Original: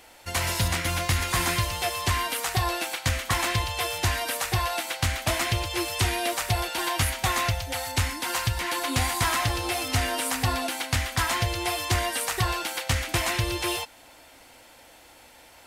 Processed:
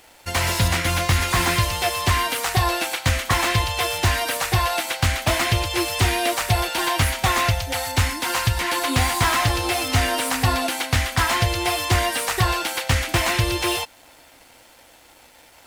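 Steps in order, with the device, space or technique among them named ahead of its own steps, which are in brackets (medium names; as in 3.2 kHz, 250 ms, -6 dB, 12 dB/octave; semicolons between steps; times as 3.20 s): early transistor amplifier (crossover distortion -56 dBFS; slew-rate limiter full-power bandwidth 210 Hz); trim +6 dB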